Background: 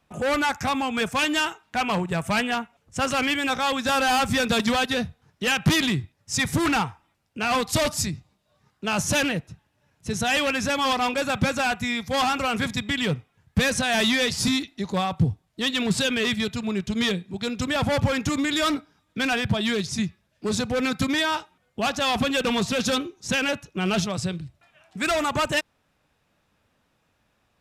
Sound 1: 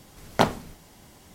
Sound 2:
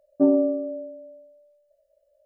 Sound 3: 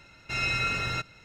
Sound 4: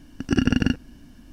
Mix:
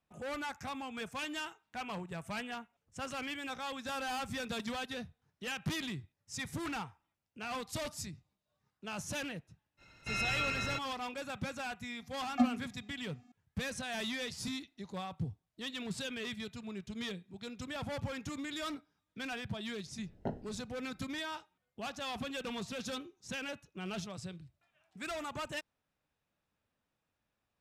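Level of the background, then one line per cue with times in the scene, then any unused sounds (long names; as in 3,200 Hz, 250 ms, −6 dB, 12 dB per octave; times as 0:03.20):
background −16.5 dB
0:09.77: mix in 3 −6.5 dB, fades 0.05 s
0:11.98: mix in 1 −6 dB + channel vocoder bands 32, square 245 Hz
0:19.86: mix in 1 −13 dB + moving average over 38 samples
not used: 2, 4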